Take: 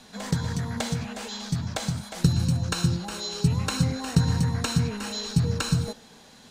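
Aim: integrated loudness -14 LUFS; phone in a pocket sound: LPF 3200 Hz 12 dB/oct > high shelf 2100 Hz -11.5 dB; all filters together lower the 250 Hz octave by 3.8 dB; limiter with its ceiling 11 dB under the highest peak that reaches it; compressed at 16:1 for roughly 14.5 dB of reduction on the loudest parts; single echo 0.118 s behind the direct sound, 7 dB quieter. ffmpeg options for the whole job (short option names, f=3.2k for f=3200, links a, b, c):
-af "equalizer=f=250:t=o:g=-7,acompressor=threshold=-32dB:ratio=16,alimiter=level_in=6dB:limit=-24dB:level=0:latency=1,volume=-6dB,lowpass=3.2k,highshelf=f=2.1k:g=-11.5,aecho=1:1:118:0.447,volume=27dB"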